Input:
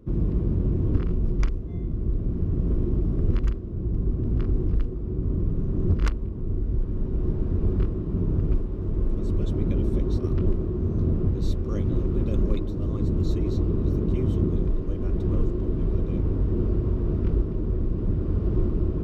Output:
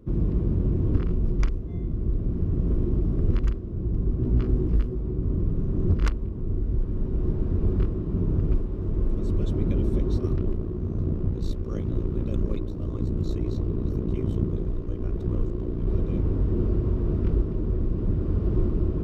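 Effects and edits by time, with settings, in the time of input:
0:04.19–0:05.12: double-tracking delay 16 ms −3.5 dB
0:10.36–0:15.87: amplitude modulation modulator 59 Hz, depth 50%

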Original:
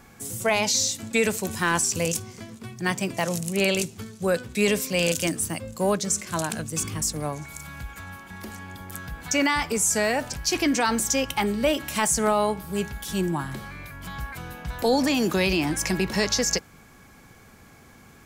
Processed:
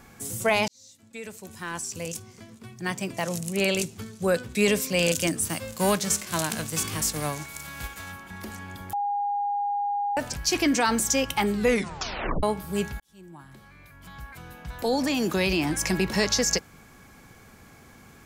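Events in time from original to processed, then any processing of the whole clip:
0:00.68–0:04.30: fade in
0:05.45–0:08.11: spectral envelope flattened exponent 0.6
0:08.93–0:10.17: beep over 814 Hz −24 dBFS
0:11.53: tape stop 0.90 s
0:13.00–0:15.96: fade in

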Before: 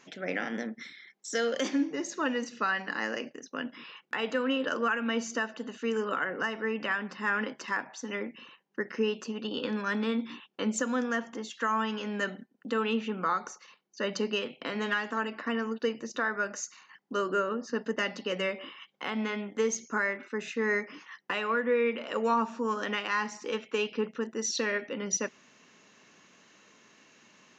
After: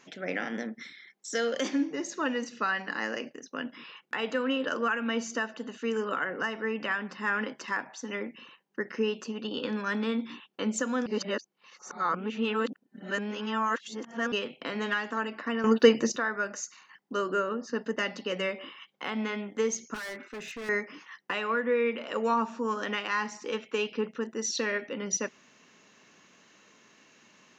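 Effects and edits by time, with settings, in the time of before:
0:11.06–0:14.32: reverse
0:15.64–0:16.16: clip gain +11.5 dB
0:19.94–0:20.69: hard clipping −36.5 dBFS

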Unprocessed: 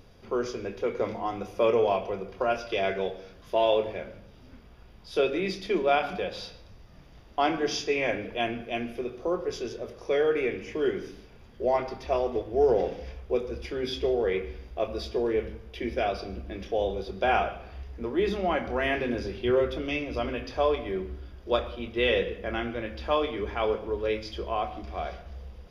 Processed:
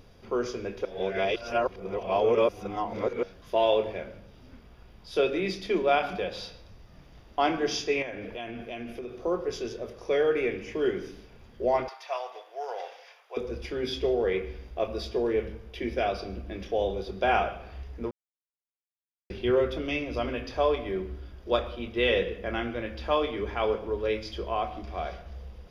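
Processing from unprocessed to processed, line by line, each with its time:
0:00.85–0:03.23: reverse
0:08.02–0:09.25: downward compressor, threshold −33 dBFS
0:11.88–0:13.37: high-pass filter 750 Hz 24 dB per octave
0:18.11–0:19.30: silence

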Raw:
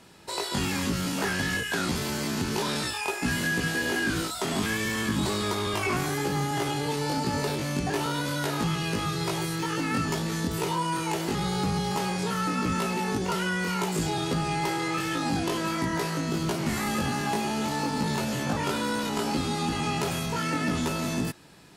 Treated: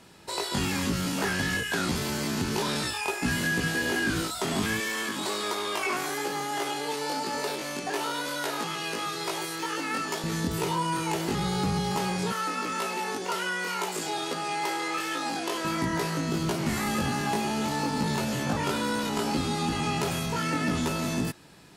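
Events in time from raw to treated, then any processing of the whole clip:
0:04.80–0:10.24: high-pass filter 380 Hz
0:12.32–0:15.65: high-pass filter 400 Hz

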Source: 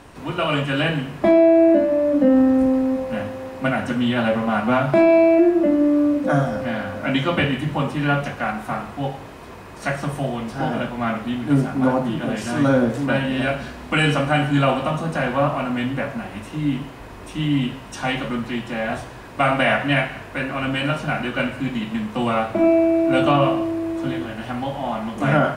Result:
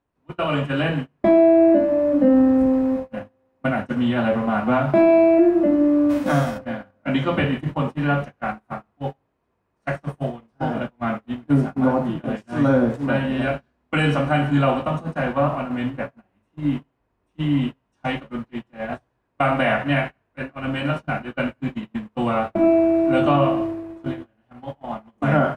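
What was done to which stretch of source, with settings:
0:06.09–0:06.57: spectral envelope flattened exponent 0.6
whole clip: noise gate −23 dBFS, range −33 dB; high-shelf EQ 2,500 Hz −9.5 dB

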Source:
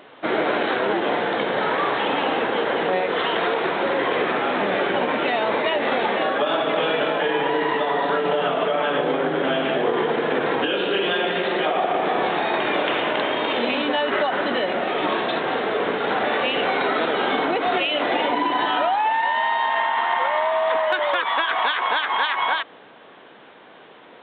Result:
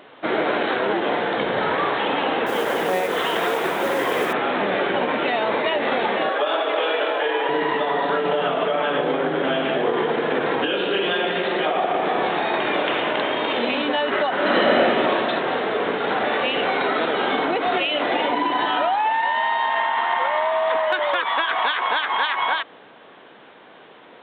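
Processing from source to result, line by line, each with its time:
0:01.38–0:01.88: parametric band 75 Hz +10.5 dB 1.3 octaves
0:02.46–0:04.33: noise that follows the level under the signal 20 dB
0:06.29–0:07.49: high-pass filter 340 Hz 24 dB per octave
0:14.35–0:14.79: thrown reverb, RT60 2.7 s, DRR −5.5 dB

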